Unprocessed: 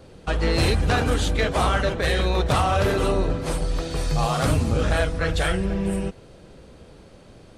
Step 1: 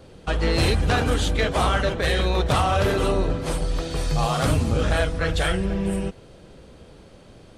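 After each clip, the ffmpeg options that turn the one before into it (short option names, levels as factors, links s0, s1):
-af "equalizer=f=3200:t=o:w=0.25:g=2.5"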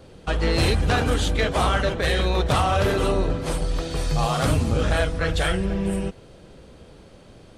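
-af "aeval=exprs='0.282*(cos(1*acos(clip(val(0)/0.282,-1,1)))-cos(1*PI/2))+0.00316*(cos(4*acos(clip(val(0)/0.282,-1,1)))-cos(4*PI/2))':c=same"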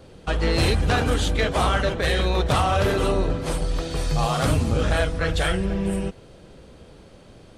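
-af anull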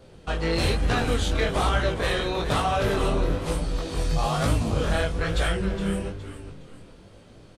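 -filter_complex "[0:a]asplit=5[s0][s1][s2][s3][s4];[s1]adelay=415,afreqshift=-100,volume=0.282[s5];[s2]adelay=830,afreqshift=-200,volume=0.0933[s6];[s3]adelay=1245,afreqshift=-300,volume=0.0305[s7];[s4]adelay=1660,afreqshift=-400,volume=0.0101[s8];[s0][s5][s6][s7][s8]amix=inputs=5:normalize=0,flanger=delay=17:depth=7.8:speed=1.1"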